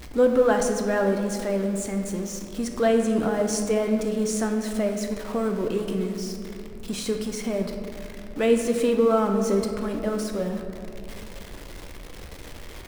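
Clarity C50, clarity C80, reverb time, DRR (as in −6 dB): 5.5 dB, 7.0 dB, 2.6 s, 3.5 dB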